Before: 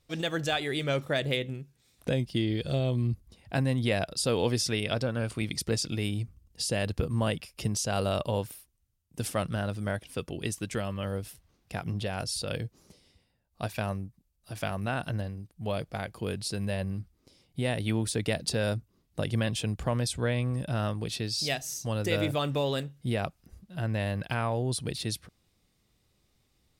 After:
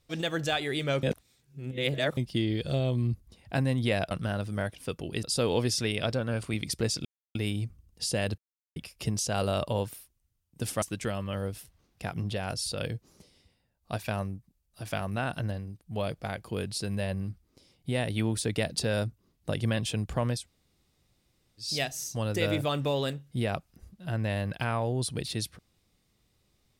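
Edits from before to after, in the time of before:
1.03–2.17 reverse
5.93 insert silence 0.30 s
6.96–7.34 mute
9.4–10.52 move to 4.11
20.09–21.35 room tone, crossfade 0.16 s

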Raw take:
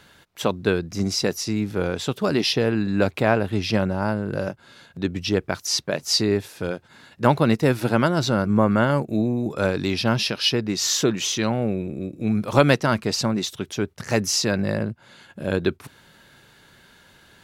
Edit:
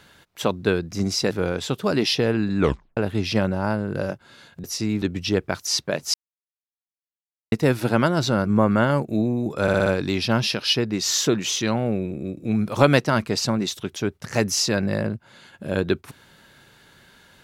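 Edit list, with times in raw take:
1.31–1.69 move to 5.02
2.97 tape stop 0.38 s
6.14–7.52 mute
9.62 stutter 0.06 s, 5 plays

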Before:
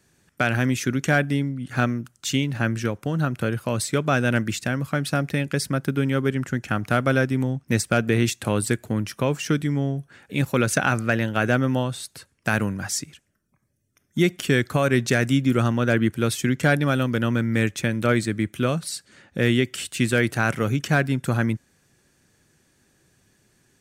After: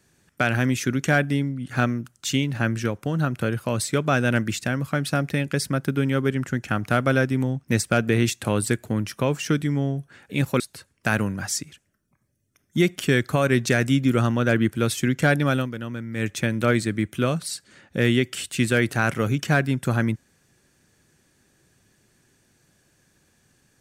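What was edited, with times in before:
10.6–12.01 cut
16.97–17.72 dip -9.5 dB, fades 0.16 s

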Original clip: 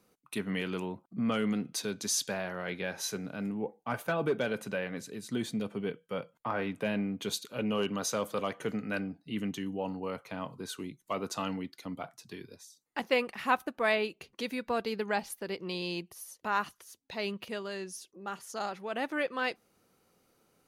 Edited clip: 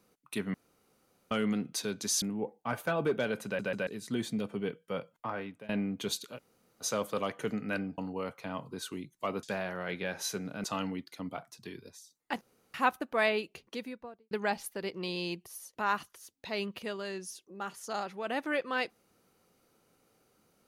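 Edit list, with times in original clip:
0.54–1.31 room tone
2.22–3.43 move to 11.3
4.66 stutter in place 0.14 s, 3 plays
6.31–6.9 fade out, to -22 dB
7.57–8.04 room tone, crossfade 0.06 s
9.19–9.85 cut
13.07–13.4 room tone
14.18–14.97 studio fade out

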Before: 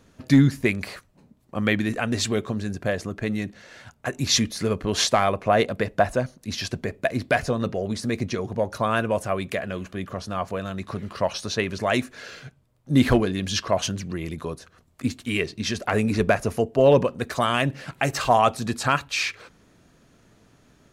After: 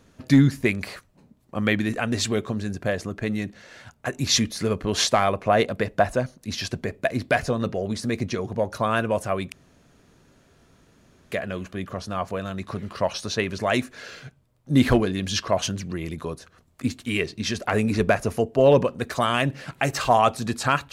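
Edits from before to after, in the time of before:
9.52 insert room tone 1.80 s

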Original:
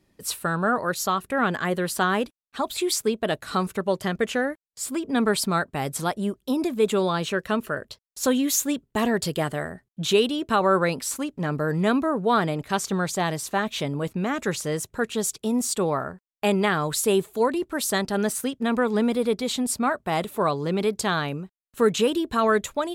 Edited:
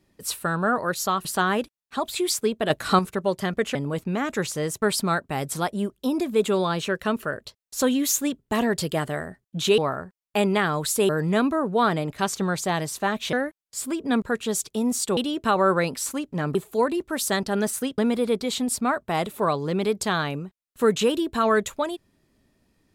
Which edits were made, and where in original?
1.25–1.87 cut
3.32–3.61 gain +6 dB
4.37–5.26 swap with 13.84–14.91
10.22–11.6 swap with 15.86–17.17
18.6–18.96 cut

